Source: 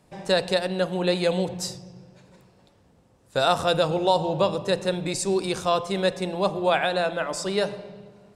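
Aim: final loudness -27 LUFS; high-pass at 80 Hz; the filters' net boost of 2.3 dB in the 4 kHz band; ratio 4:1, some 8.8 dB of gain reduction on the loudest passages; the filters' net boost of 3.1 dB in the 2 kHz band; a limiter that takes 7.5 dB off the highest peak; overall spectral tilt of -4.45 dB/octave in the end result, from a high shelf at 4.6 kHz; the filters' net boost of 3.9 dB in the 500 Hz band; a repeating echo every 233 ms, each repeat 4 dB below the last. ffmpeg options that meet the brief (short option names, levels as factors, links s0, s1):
-af "highpass=80,equalizer=f=500:t=o:g=4.5,equalizer=f=2000:t=o:g=4,equalizer=f=4000:t=o:g=3.5,highshelf=f=4600:g=-4.5,acompressor=threshold=0.0631:ratio=4,alimiter=limit=0.0891:level=0:latency=1,aecho=1:1:233|466|699|932|1165|1398|1631|1864|2097:0.631|0.398|0.25|0.158|0.0994|0.0626|0.0394|0.0249|0.0157,volume=1.33"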